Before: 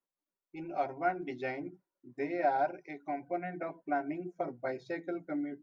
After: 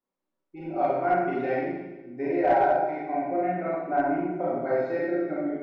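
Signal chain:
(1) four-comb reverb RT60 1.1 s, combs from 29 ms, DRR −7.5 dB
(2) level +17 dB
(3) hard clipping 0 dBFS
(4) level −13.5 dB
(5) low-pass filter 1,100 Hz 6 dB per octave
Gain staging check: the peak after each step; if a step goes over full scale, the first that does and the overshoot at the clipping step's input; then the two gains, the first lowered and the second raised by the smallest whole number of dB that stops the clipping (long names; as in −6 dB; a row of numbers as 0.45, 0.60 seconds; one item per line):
−10.0, +7.0, 0.0, −13.5, −13.5 dBFS
step 2, 7.0 dB
step 2 +10 dB, step 4 −6.5 dB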